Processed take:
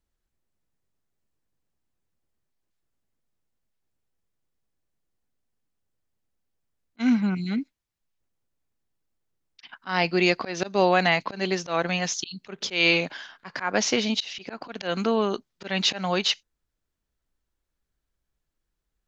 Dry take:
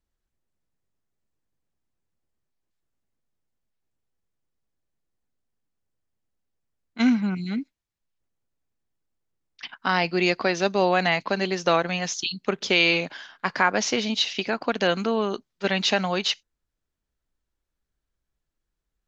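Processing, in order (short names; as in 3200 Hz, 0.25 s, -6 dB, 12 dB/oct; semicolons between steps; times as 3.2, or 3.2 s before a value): auto swell 0.163 s; gain +1 dB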